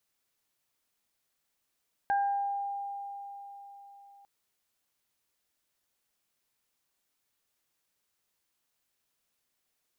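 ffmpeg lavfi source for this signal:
-f lavfi -i "aevalsrc='0.0631*pow(10,-3*t/4.29)*sin(2*PI*801*t)+0.0251*pow(10,-3*t/0.7)*sin(2*PI*1602*t)':d=2.15:s=44100"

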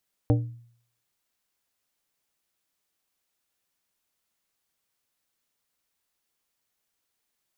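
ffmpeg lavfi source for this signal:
-f lavfi -i "aevalsrc='0.158*pow(10,-3*t/0.58)*sin(2*PI*118*t)+0.1*pow(10,-3*t/0.305)*sin(2*PI*295*t)+0.0631*pow(10,-3*t/0.22)*sin(2*PI*472*t)+0.0398*pow(10,-3*t/0.188)*sin(2*PI*590*t)+0.0251*pow(10,-3*t/0.156)*sin(2*PI*767*t)':d=0.89:s=44100"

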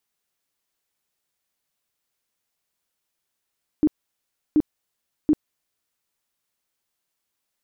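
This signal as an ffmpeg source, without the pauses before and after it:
-f lavfi -i "aevalsrc='0.224*sin(2*PI*304*mod(t,0.73))*lt(mod(t,0.73),13/304)':d=2.19:s=44100"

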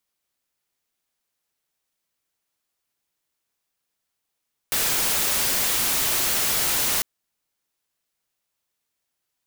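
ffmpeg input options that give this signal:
-f lavfi -i "anoisesrc=c=white:a=0.13:d=2.3:r=44100:seed=1"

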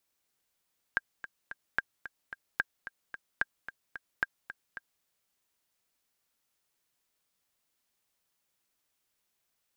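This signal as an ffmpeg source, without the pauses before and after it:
-f lavfi -i "aevalsrc='pow(10,(-13.5-13.5*gte(mod(t,3*60/221),60/221))/20)*sin(2*PI*1600*mod(t,60/221))*exp(-6.91*mod(t,60/221)/0.03)':d=4.07:s=44100"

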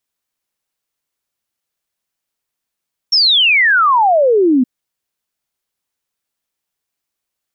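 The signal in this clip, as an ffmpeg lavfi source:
-f lavfi -i "aevalsrc='0.398*clip(min(t,1.52-t)/0.01,0,1)*sin(2*PI*5600*1.52/log(240/5600)*(exp(log(240/5600)*t/1.52)-1))':d=1.52:s=44100"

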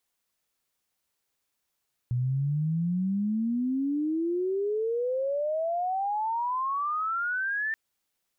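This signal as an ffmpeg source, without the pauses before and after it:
-f lavfi -i "aevalsrc='pow(10,(-24-2.5*t/5.63)/20)*sin(2*PI*120*5.63/log(1800/120)*(exp(log(1800/120)*t/5.63)-1))':d=5.63:s=44100"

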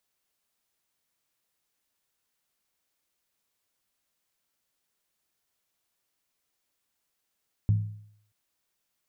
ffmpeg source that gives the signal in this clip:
-f lavfi -i "aevalsrc='0.141*pow(10,-3*t/0.66)*sin(2*PI*105*t)+0.0376*pow(10,-3*t/0.523)*sin(2*PI*167.4*t)+0.01*pow(10,-3*t/0.452)*sin(2*PI*224.3*t)+0.00266*pow(10,-3*t/0.436)*sin(2*PI*241.1*t)+0.000708*pow(10,-3*t/0.405)*sin(2*PI*278.6*t)':d=0.63:s=44100"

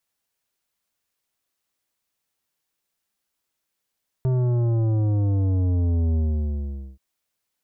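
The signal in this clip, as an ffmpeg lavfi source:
-f lavfi -i "aevalsrc='0.106*clip((2.73-t)/0.82,0,1)*tanh(3.55*sin(2*PI*130*2.73/log(65/130)*(exp(log(65/130)*t/2.73)-1)))/tanh(3.55)':d=2.73:s=44100"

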